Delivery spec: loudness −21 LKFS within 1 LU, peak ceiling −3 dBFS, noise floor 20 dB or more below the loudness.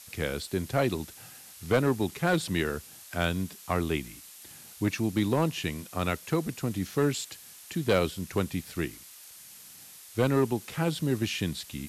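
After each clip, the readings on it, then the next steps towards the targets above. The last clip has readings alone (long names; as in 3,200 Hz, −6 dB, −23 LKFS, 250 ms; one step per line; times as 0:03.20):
share of clipped samples 0.4%; peaks flattened at −17.0 dBFS; background noise floor −49 dBFS; target noise floor −50 dBFS; integrated loudness −30.0 LKFS; sample peak −17.0 dBFS; target loudness −21.0 LKFS
→ clipped peaks rebuilt −17 dBFS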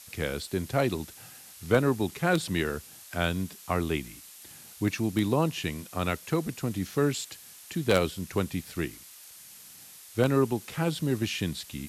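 share of clipped samples 0.0%; background noise floor −49 dBFS; target noise floor −50 dBFS
→ broadband denoise 6 dB, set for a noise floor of −49 dBFS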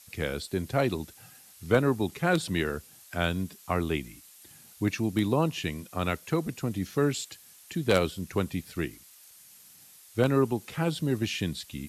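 background noise floor −54 dBFS; integrated loudness −29.5 LKFS; sample peak −8.0 dBFS; target loudness −21.0 LKFS
→ level +8.5 dB
brickwall limiter −3 dBFS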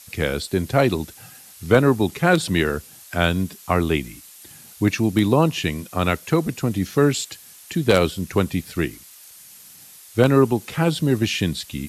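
integrated loudness −21.0 LKFS; sample peak −3.0 dBFS; background noise floor −45 dBFS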